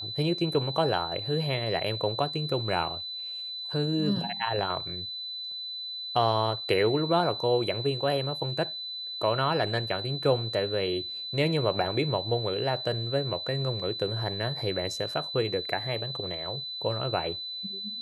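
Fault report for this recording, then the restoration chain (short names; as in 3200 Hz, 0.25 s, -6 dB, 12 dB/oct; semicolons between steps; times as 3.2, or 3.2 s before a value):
tone 4000 Hz -34 dBFS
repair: notch 4000 Hz, Q 30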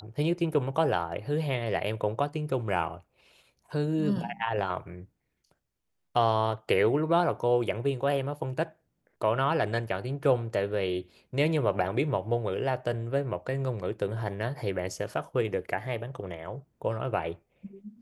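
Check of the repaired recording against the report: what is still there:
none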